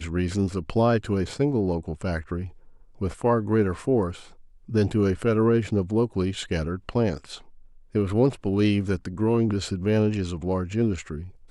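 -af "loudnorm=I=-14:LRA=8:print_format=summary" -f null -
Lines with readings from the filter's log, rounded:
Input Integrated:    -25.1 LUFS
Input True Peak:     -10.0 dBTP
Input LRA:             2.2 LU
Input Threshold:     -35.5 LUFS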